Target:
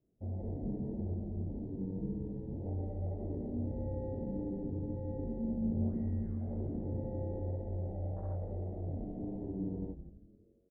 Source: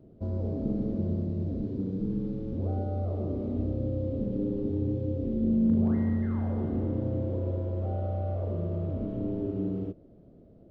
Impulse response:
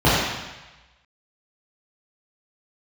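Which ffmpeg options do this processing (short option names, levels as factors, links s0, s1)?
-filter_complex "[0:a]afwtdn=0.0224,flanger=delay=1.8:depth=7.2:regen=-46:speed=1.8:shape=triangular,asplit=2[s0][s1];[s1]adelay=21,volume=0.596[s2];[s0][s2]amix=inputs=2:normalize=0,asplit=6[s3][s4][s5][s6][s7][s8];[s4]adelay=168,afreqshift=-130,volume=0.299[s9];[s5]adelay=336,afreqshift=-260,volume=0.14[s10];[s6]adelay=504,afreqshift=-390,volume=0.0661[s11];[s7]adelay=672,afreqshift=-520,volume=0.0309[s12];[s8]adelay=840,afreqshift=-650,volume=0.0146[s13];[s3][s9][s10][s11][s12][s13]amix=inputs=6:normalize=0,asplit=2[s14][s15];[1:a]atrim=start_sample=2205[s16];[s15][s16]afir=irnorm=-1:irlink=0,volume=0.00473[s17];[s14][s17]amix=inputs=2:normalize=0,volume=0.531"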